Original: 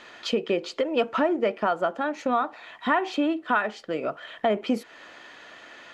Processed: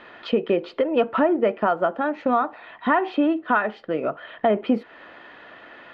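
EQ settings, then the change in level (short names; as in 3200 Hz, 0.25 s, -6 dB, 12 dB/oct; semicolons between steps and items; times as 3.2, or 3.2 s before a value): air absorption 390 m; notch 2300 Hz, Q 25; +5.0 dB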